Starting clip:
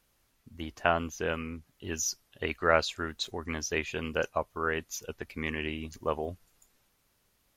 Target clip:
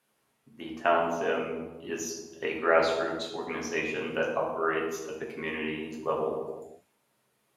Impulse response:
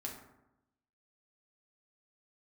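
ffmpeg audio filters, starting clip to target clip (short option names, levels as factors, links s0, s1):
-filter_complex "[0:a]highpass=230,equalizer=f=5700:t=o:w=1.3:g=-7[s0];[1:a]atrim=start_sample=2205,afade=t=out:st=0.32:d=0.01,atrim=end_sample=14553,asetrate=23373,aresample=44100[s1];[s0][s1]afir=irnorm=-1:irlink=0"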